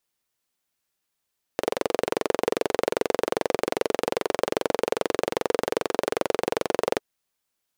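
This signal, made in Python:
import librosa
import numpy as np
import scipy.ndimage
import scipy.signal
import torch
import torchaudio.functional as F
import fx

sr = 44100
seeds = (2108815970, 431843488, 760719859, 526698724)

y = fx.engine_single(sr, seeds[0], length_s=5.42, rpm=2700, resonances_hz=(460.0,))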